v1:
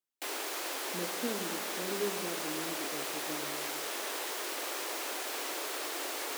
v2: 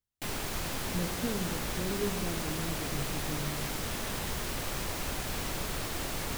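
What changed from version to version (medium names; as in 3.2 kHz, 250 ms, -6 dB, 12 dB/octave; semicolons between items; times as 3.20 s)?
background: remove steep high-pass 310 Hz 36 dB/octave; master: remove high-pass 240 Hz 24 dB/octave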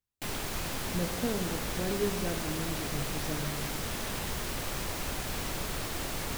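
speech: remove boxcar filter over 47 samples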